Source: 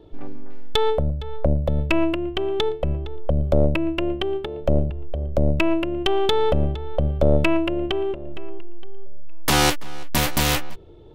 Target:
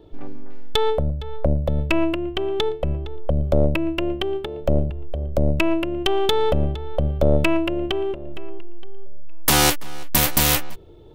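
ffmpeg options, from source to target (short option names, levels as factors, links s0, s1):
-af "asetnsamples=n=441:p=0,asendcmd='3.54 highshelf g 12',highshelf=f=8900:g=5"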